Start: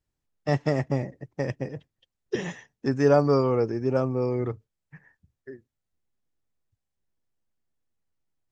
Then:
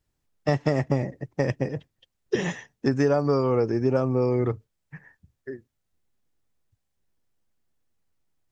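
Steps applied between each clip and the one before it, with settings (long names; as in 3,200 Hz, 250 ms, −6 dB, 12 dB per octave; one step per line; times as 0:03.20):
downward compressor 12 to 1, threshold −23 dBFS, peak gain reduction 10 dB
level +5.5 dB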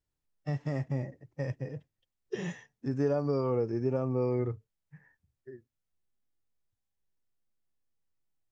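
harmonic and percussive parts rebalanced percussive −14 dB
level −6 dB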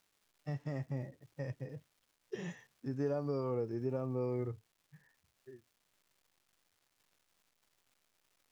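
surface crackle 540 per second −55 dBFS
level −6.5 dB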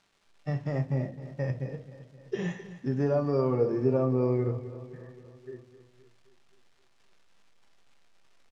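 high-frequency loss of the air 74 metres
repeating echo 261 ms, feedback 58%, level −14.5 dB
on a send at −6 dB: convolution reverb RT60 0.35 s, pre-delay 5 ms
on the sum: level +8.5 dB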